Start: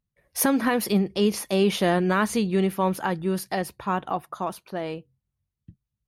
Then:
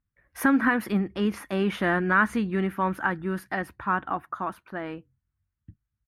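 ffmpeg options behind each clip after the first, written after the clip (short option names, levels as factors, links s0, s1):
-af "firequalizer=gain_entry='entry(100,0);entry(150,-8);entry(290,0);entry(410,-10);entry(580,-9);entry(1500,5);entry(2500,-7);entry(4500,-18);entry(13000,-15)':delay=0.05:min_phase=1,volume=1.33"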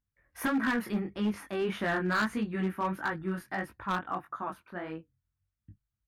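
-af "flanger=delay=18.5:depth=5:speed=1.6,volume=12.6,asoftclip=hard,volume=0.0794,volume=0.794"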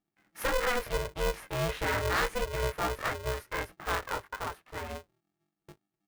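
-af "aeval=exprs='val(0)*sgn(sin(2*PI*250*n/s))':c=same"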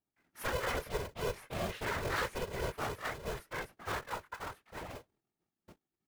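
-af "afftfilt=real='hypot(re,im)*cos(2*PI*random(0))':imag='hypot(re,im)*sin(2*PI*random(1))':win_size=512:overlap=0.75"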